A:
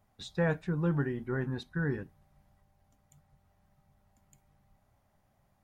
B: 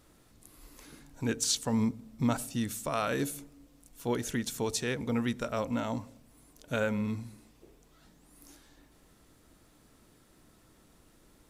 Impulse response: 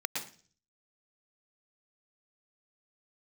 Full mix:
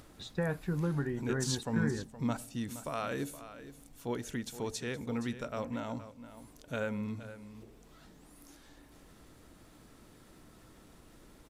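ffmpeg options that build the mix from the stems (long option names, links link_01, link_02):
-filter_complex "[0:a]acompressor=threshold=-28dB:ratio=6,volume=0dB[link_01];[1:a]acompressor=mode=upward:threshold=-41dB:ratio=2.5,volume=-5dB,asplit=2[link_02][link_03];[link_03]volume=-13.5dB,aecho=0:1:470:1[link_04];[link_01][link_02][link_04]amix=inputs=3:normalize=0,highshelf=frequency=4900:gain=-4.5"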